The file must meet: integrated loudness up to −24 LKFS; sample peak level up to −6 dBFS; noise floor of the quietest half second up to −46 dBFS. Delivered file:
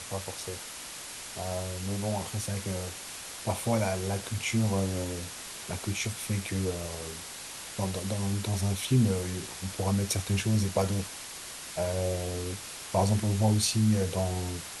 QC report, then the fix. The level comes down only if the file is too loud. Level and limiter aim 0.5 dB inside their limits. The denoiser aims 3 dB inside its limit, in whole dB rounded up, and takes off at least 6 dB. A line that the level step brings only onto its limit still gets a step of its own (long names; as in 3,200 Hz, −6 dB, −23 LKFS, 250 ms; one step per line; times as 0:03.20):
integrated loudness −31.0 LKFS: in spec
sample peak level −13.0 dBFS: in spec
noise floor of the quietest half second −42 dBFS: out of spec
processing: broadband denoise 7 dB, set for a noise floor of −42 dBFS